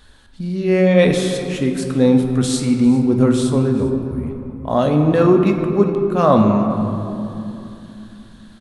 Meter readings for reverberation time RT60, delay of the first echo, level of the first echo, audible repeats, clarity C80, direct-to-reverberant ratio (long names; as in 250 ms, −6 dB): 2.9 s, 398 ms, −18.5 dB, 1, 6.0 dB, 3.5 dB